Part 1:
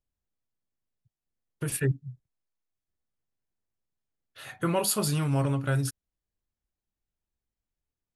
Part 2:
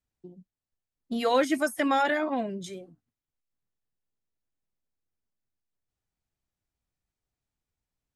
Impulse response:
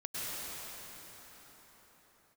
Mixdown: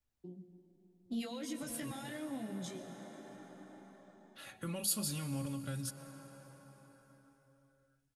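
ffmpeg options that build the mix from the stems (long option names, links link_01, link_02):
-filter_complex "[0:a]equalizer=frequency=320:width_type=o:width=0.24:gain=-8,aecho=1:1:3.6:0.57,volume=-7.5dB,asplit=2[link_01][link_02];[link_02]volume=-17.5dB[link_03];[1:a]alimiter=limit=-22dB:level=0:latency=1,acompressor=threshold=-40dB:ratio=1.5,flanger=delay=16:depth=2.8:speed=2.7,volume=-0.5dB,asplit=3[link_04][link_05][link_06];[link_05]volume=-10dB[link_07];[link_06]apad=whole_len=359889[link_08];[link_01][link_08]sidechaincompress=threshold=-46dB:ratio=8:attack=16:release=390[link_09];[2:a]atrim=start_sample=2205[link_10];[link_03][link_07]amix=inputs=2:normalize=0[link_11];[link_11][link_10]afir=irnorm=-1:irlink=0[link_12];[link_09][link_04][link_12]amix=inputs=3:normalize=0,acrossover=split=290|3000[link_13][link_14][link_15];[link_14]acompressor=threshold=-52dB:ratio=3[link_16];[link_13][link_16][link_15]amix=inputs=3:normalize=0"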